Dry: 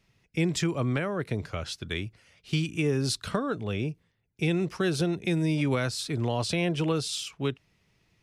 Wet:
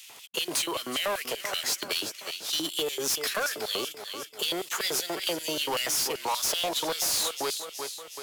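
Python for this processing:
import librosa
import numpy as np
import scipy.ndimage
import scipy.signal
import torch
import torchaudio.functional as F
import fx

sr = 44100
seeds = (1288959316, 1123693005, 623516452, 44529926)

p1 = fx.cvsd(x, sr, bps=64000)
p2 = fx.low_shelf(p1, sr, hz=350.0, db=7.0)
p3 = p2 + fx.echo_feedback(p2, sr, ms=366, feedback_pct=43, wet_db=-15.5, dry=0)
p4 = fx.formant_shift(p3, sr, semitones=4)
p5 = fx.high_shelf(p4, sr, hz=6600.0, db=8.5)
p6 = fx.over_compress(p5, sr, threshold_db=-28.0, ratio=-1.0)
p7 = p5 + (p6 * librosa.db_to_amplitude(-2.5))
p8 = fx.filter_lfo_highpass(p7, sr, shape='square', hz=5.2, low_hz=810.0, high_hz=2900.0, q=1.3)
p9 = 10.0 ** (-25.0 / 20.0) * np.tanh(p8 / 10.0 ** (-25.0 / 20.0))
p10 = fx.band_squash(p9, sr, depth_pct=40)
y = p10 * librosa.db_to_amplitude(2.5)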